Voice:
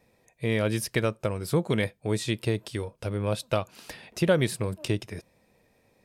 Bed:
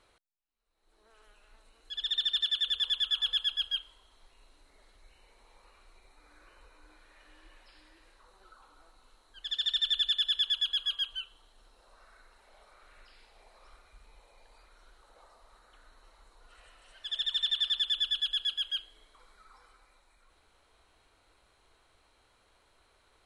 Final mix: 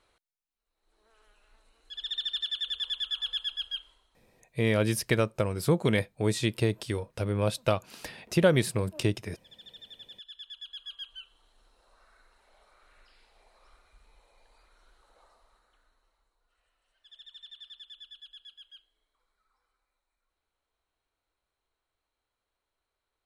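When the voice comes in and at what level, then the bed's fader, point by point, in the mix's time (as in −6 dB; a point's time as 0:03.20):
4.15 s, +0.5 dB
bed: 0:03.90 −3 dB
0:04.52 −20.5 dB
0:10.12 −20.5 dB
0:11.47 −3.5 dB
0:15.30 −3.5 dB
0:16.41 −19 dB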